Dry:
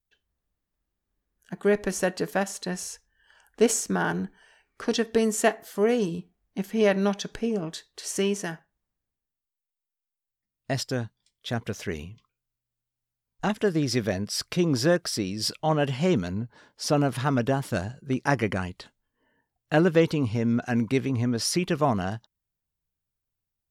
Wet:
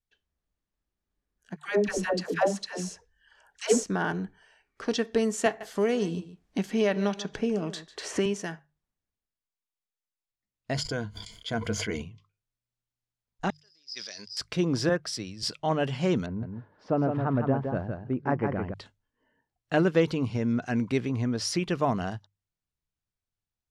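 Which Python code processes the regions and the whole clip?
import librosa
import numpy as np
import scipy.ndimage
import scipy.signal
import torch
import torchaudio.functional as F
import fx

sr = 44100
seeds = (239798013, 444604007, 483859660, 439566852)

y = fx.chain(x, sr, fx.dispersion(late='lows', ms=134.0, hz=580.0),
    fx.bell_lfo(hz=2.2, low_hz=490.0, high_hz=7500.0, db=8), at=(1.56, 3.84))
y = fx.chain(y, sr, fx.echo_single(ms=144, db=-17.5),
    fx.band_squash(depth_pct=70), at=(5.46, 8.26))
y = fx.chain(y, sr, fx.ripple_eq(per_octave=1.8, db=12),
    fx.sustainer(db_per_s=49.0), at=(10.74, 12.02))
y = fx.chain(y, sr, fx.bandpass_q(hz=5000.0, q=20.0),
    fx.sustainer(db_per_s=23.0), at=(13.5, 14.37))
y = fx.chain(y, sr, fx.peak_eq(hz=330.0, db=-4.0, octaves=2.1),
    fx.band_widen(depth_pct=70), at=(14.89, 15.43))
y = fx.chain(y, sr, fx.lowpass(hz=1200.0, slope=12),
    fx.echo_single(ms=163, db=-5.5), at=(16.26, 18.74))
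y = scipy.signal.sosfilt(scipy.signal.butter(2, 7600.0, 'lowpass', fs=sr, output='sos'), y)
y = fx.hum_notches(y, sr, base_hz=50, count=3)
y = y * 10.0 ** (-2.5 / 20.0)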